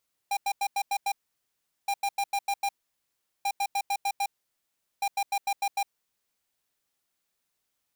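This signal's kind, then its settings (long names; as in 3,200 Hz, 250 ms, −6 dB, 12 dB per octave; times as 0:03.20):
beeps in groups square 801 Hz, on 0.06 s, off 0.09 s, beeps 6, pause 0.76 s, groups 4, −27 dBFS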